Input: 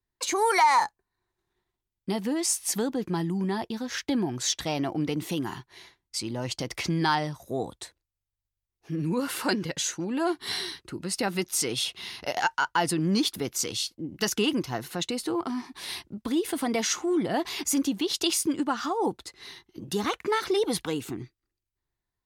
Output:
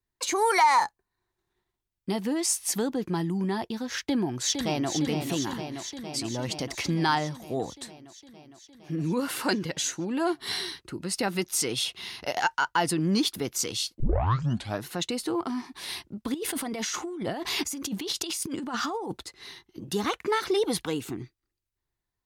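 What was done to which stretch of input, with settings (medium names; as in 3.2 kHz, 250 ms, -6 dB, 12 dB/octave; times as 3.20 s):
4.05–4.91 s: echo throw 460 ms, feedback 75%, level -6.5 dB
14.00 s: tape start 0.85 s
16.34–19.23 s: compressor with a negative ratio -32 dBFS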